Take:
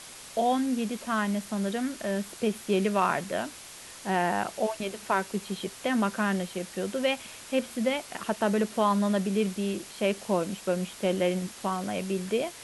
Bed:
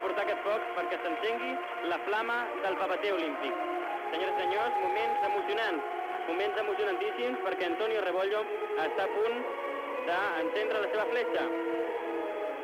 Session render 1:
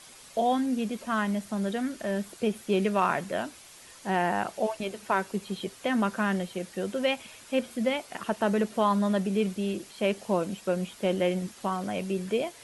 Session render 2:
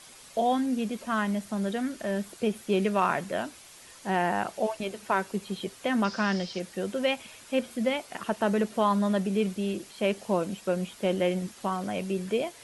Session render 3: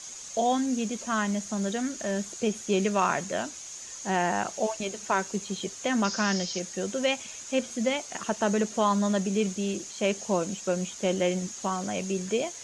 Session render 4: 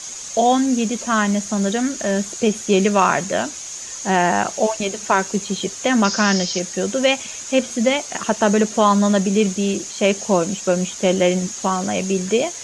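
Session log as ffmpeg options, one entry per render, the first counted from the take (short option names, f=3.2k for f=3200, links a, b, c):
-af "afftdn=nr=7:nf=-46"
-filter_complex "[0:a]asettb=1/sr,asplit=3[a][b][c];[a]atrim=end=6.044[d];[b]atrim=start=6.04:end=6.6,asetpts=PTS-STARTPTS,afade=t=in:d=0.004:c=qsin,afade=t=out:st=0.556:d=0.004:c=qsin,lowpass=f=5.1k:t=q:w=7.2[e];[c]atrim=start=6.596[f];[d][e]acrossfade=d=0.004:c1=hsin:c2=qsin[g];[g][f]acrossfade=d=0.004:c1=qsin:c2=hsin"
-af "lowpass=f=6.6k:t=q:w=10"
-af "volume=9.5dB,alimiter=limit=-3dB:level=0:latency=1"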